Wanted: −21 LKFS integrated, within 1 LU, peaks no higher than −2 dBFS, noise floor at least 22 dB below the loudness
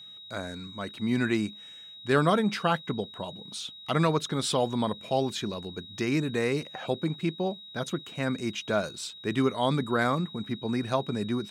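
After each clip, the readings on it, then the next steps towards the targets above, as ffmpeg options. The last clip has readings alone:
interfering tone 3,800 Hz; level of the tone −44 dBFS; integrated loudness −29.5 LKFS; sample peak −11.0 dBFS; target loudness −21.0 LKFS
→ -af "bandreject=frequency=3800:width=30"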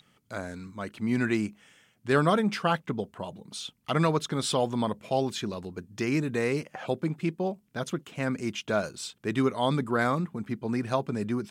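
interfering tone none found; integrated loudness −29.5 LKFS; sample peak −11.0 dBFS; target loudness −21.0 LKFS
→ -af "volume=8.5dB"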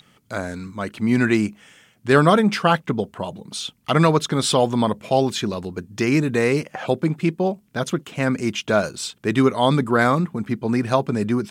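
integrated loudness −21.0 LKFS; sample peak −2.5 dBFS; background noise floor −60 dBFS

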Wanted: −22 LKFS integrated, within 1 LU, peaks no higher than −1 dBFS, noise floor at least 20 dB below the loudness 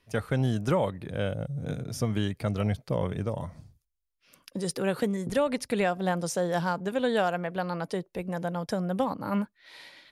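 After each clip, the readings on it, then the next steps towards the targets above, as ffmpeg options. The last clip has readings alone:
integrated loudness −30.0 LKFS; sample peak −15.5 dBFS; target loudness −22.0 LKFS
→ -af "volume=8dB"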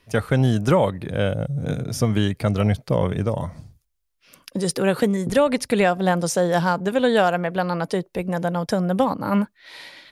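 integrated loudness −22.0 LKFS; sample peak −7.5 dBFS; background noise floor −70 dBFS

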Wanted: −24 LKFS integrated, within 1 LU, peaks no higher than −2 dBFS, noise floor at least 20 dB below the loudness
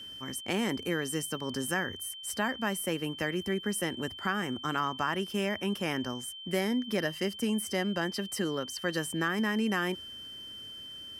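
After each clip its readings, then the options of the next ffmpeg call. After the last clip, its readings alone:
interfering tone 3,100 Hz; level of the tone −42 dBFS; integrated loudness −32.5 LKFS; sample peak −15.5 dBFS; target loudness −24.0 LKFS
→ -af "bandreject=frequency=3100:width=30"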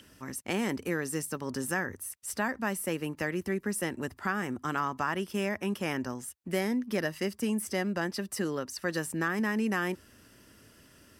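interfering tone none found; integrated loudness −32.5 LKFS; sample peak −16.0 dBFS; target loudness −24.0 LKFS
→ -af "volume=8.5dB"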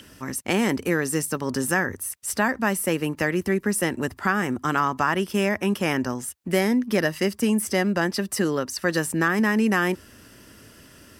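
integrated loudness −24.0 LKFS; sample peak −7.5 dBFS; background noise floor −51 dBFS

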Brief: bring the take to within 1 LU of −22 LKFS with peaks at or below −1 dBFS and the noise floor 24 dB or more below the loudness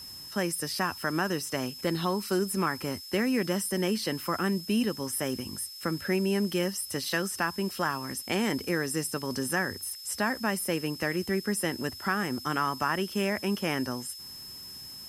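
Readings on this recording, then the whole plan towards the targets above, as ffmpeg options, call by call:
interfering tone 5,200 Hz; level of the tone −42 dBFS; background noise floor −44 dBFS; target noise floor −54 dBFS; integrated loudness −30.0 LKFS; sample peak −13.0 dBFS; target loudness −22.0 LKFS
→ -af "bandreject=frequency=5200:width=30"
-af "afftdn=noise_reduction=10:noise_floor=-44"
-af "volume=8dB"

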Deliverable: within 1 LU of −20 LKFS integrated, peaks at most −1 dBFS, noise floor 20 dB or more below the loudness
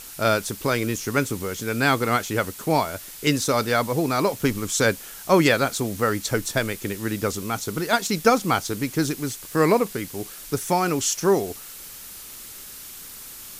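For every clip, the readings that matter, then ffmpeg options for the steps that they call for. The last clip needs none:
background noise floor −40 dBFS; target noise floor −43 dBFS; integrated loudness −23.0 LKFS; sample peak −3.0 dBFS; target loudness −20.0 LKFS
→ -af "afftdn=noise_reduction=6:noise_floor=-40"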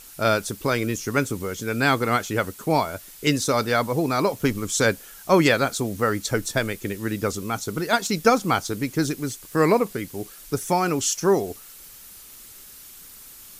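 background noise floor −45 dBFS; integrated loudness −23.5 LKFS; sample peak −3.0 dBFS; target loudness −20.0 LKFS
→ -af "volume=3.5dB,alimiter=limit=-1dB:level=0:latency=1"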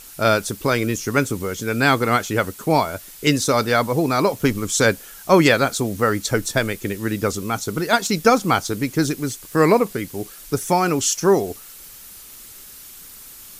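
integrated loudness −20.0 LKFS; sample peak −1.0 dBFS; background noise floor −41 dBFS

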